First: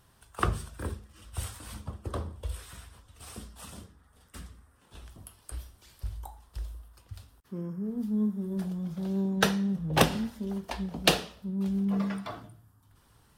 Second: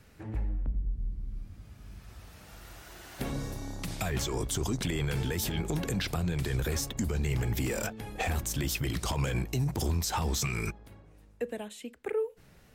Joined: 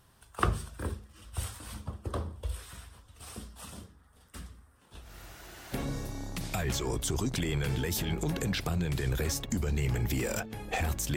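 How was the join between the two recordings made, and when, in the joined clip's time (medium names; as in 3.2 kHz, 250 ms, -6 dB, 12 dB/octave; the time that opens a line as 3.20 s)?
first
5.06 s: go over to second from 2.53 s, crossfade 0.14 s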